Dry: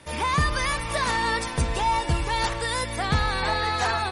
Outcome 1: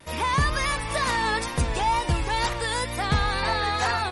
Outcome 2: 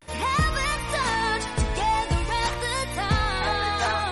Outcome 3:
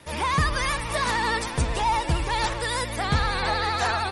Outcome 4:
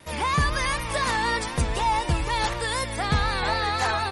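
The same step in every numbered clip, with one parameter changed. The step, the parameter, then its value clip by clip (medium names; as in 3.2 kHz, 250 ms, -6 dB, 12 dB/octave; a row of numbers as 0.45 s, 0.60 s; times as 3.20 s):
vibrato, rate: 2.1 Hz, 0.46 Hz, 13 Hz, 4 Hz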